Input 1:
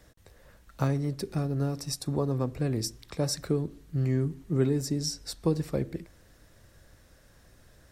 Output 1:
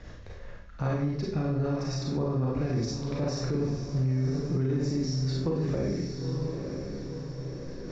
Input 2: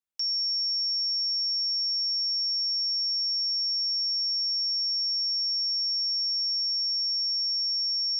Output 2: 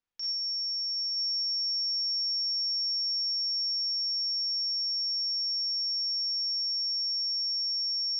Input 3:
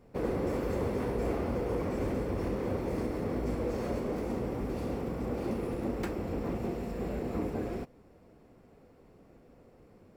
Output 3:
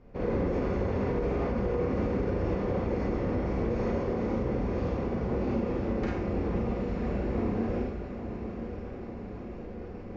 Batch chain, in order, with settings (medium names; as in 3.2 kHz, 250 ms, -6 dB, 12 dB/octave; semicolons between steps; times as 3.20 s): Chebyshev low-pass 6.8 kHz, order 6; bass shelf 70 Hz +8 dB; de-hum 207.6 Hz, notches 7; on a send: echo that smears into a reverb 953 ms, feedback 50%, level -8.5 dB; on the sum: Schroeder reverb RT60 0.53 s, combs from 31 ms, DRR -3.5 dB; peak limiter -19 dBFS; tone controls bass +1 dB, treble -8 dB; reverse; upward compressor, threshold -31 dBFS; reverse; trim -1.5 dB